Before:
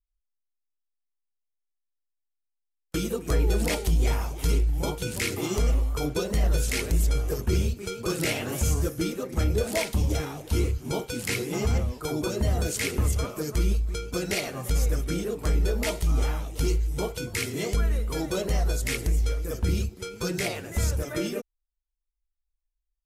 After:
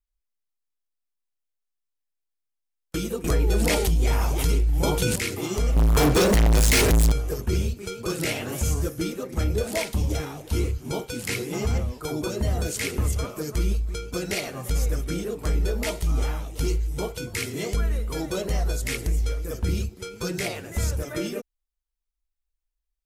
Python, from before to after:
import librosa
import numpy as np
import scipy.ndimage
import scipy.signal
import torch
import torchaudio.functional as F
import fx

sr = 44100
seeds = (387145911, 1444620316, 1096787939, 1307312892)

y = fx.env_flatten(x, sr, amount_pct=70, at=(3.24, 5.16))
y = fx.leveller(y, sr, passes=5, at=(5.76, 7.12))